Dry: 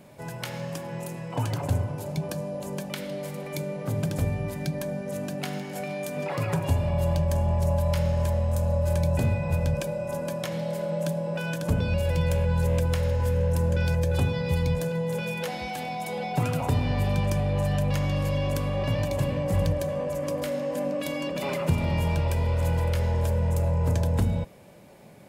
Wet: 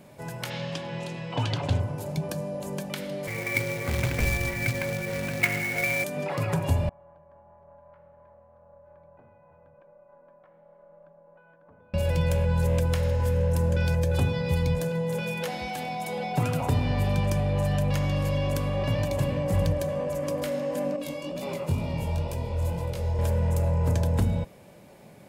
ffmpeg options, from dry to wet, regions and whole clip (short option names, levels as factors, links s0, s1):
-filter_complex "[0:a]asettb=1/sr,asplit=3[s0][s1][s2];[s0]atrim=end=0.504[s3];[s1]atrim=start=0.5:end=1.8,asetpts=PTS-STARTPTS,afade=t=in:d=0.004:c=qsin,afade=t=out:st=1.296:d=0.004:c=qsin,lowpass=5500,equalizer=f=3500:w=1.2:g=11[s4];[s2]atrim=start=1.796[s5];[s3][s4]acrossfade=d=0.004:c1=hsin:c2=qsin[s6];[s6][s5]acrossfade=d=0.004:c1=qsin:c2=hsin,asettb=1/sr,asplit=3[s7][s8][s9];[s7]atrim=end=3.274[s10];[s8]atrim=start=3.27:end=6.04,asetpts=PTS-STARTPTS,afade=t=in:d=0.004:c=qsin,afade=t=out:st=2.766:d=0.004:c=qsin,afreqshift=-36,lowpass=f=2200:t=q:w=9.5,acrusher=bits=2:mode=log:mix=0:aa=0.000001[s11];[s9]atrim=start=6.036[s12];[s10][s11]acrossfade=d=0.004:c1=hsin:c2=qsin[s13];[s13][s12]acrossfade=d=0.004:c1=qsin:c2=hsin,asettb=1/sr,asplit=3[s14][s15][s16];[s14]atrim=end=6.894[s17];[s15]atrim=start=6.89:end=11.94,asetpts=PTS-STARTPTS,afade=t=in:d=0.004:c=qsin,afade=t=out:st=5.046:d=0.004:c=qsin,lowpass=f=1200:w=0.5412,lowpass=f=1200:w=1.3066,aderivative,aeval=exprs='(tanh(79.4*val(0)+0.4)-tanh(0.4))/79.4':c=same[s18];[s16]atrim=start=11.936[s19];[s17][s18]acrossfade=d=0.004:c1=hsin:c2=qsin[s20];[s20][s19]acrossfade=d=0.004:c1=qsin:c2=hsin,asettb=1/sr,asplit=3[s21][s22][s23];[s21]atrim=end=20.964[s24];[s22]atrim=start=20.96:end=23.19,asetpts=PTS-STARTPTS,afade=t=in:d=0.004:c=qsin,afade=t=out:st=2.226:d=0.004:c=qsin,equalizer=f=1700:w=1.3:g=-7.5,bandreject=f=3100:w=24,flanger=delay=16:depth=6.4:speed=2.1[s25];[s23]atrim=start=23.186[s26];[s24][s25]acrossfade=d=0.004:c1=hsin:c2=qsin[s27];[s27][s26]acrossfade=d=0.004:c1=qsin:c2=hsin"